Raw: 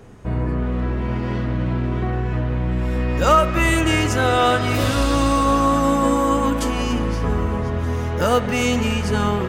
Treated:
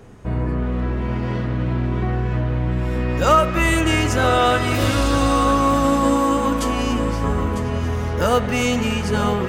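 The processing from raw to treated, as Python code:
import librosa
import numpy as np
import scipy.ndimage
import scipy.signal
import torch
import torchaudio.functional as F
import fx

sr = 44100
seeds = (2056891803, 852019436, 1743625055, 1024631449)

y = x + 10.0 ** (-11.0 / 20.0) * np.pad(x, (int(950 * sr / 1000.0), 0))[:len(x)]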